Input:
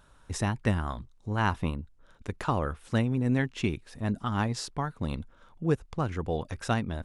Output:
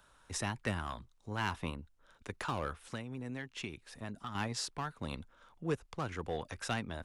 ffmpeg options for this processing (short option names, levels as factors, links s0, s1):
-filter_complex "[0:a]lowshelf=f=420:g=-10,acrossover=split=100|490|1500[s0][s1][s2][s3];[s2]asoftclip=type=hard:threshold=0.0158[s4];[s0][s1][s4][s3]amix=inputs=4:normalize=0,asettb=1/sr,asplit=3[s5][s6][s7];[s5]atrim=end=2.864[s8];[s6]atrim=start=2.86:end=4.35,asetpts=PTS-STARTPTS,afade=t=in:d=0.004:c=qsin,afade=t=out:st=1.486:d=0.004:c=qsin,acompressor=threshold=0.0126:ratio=4[s9];[s7]atrim=start=4.346[s10];[s8][s9]acrossfade=d=0.004:c1=hsin:c2=qsin[s11];[s11][s10]acrossfade=d=0.004:c1=qsin:c2=hsin,asoftclip=type=tanh:threshold=0.1,volume=0.891"